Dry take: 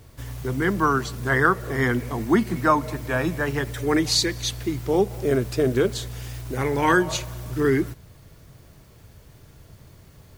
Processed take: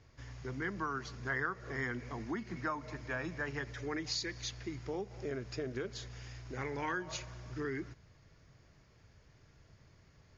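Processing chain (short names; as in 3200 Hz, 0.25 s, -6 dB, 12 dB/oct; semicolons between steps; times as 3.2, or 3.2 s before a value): compressor 5:1, threshold -22 dBFS, peak gain reduction 8.5 dB; rippled Chebyshev low-pass 6900 Hz, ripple 6 dB; gain -8 dB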